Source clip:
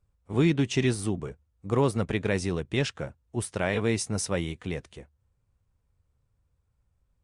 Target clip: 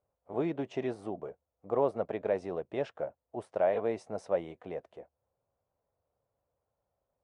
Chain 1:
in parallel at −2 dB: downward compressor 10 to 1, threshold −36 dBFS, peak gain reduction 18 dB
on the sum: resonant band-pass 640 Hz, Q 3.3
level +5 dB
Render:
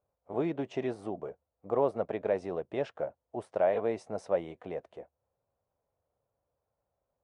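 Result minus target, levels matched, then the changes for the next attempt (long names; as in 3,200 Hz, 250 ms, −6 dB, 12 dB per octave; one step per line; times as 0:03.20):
downward compressor: peak gain reduction −9 dB
change: downward compressor 10 to 1, threshold −46 dBFS, peak gain reduction 27 dB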